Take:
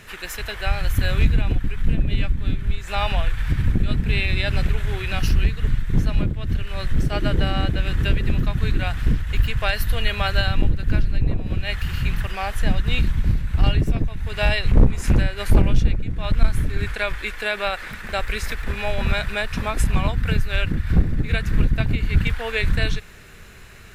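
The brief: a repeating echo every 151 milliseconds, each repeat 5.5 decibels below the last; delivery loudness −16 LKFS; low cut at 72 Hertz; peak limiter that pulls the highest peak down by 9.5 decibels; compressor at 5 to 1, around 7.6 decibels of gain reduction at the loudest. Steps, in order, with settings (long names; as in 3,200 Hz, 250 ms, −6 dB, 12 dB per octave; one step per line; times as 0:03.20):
high-pass filter 72 Hz
downward compressor 5 to 1, threshold −22 dBFS
brickwall limiter −20.5 dBFS
repeating echo 151 ms, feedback 53%, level −5.5 dB
level +14 dB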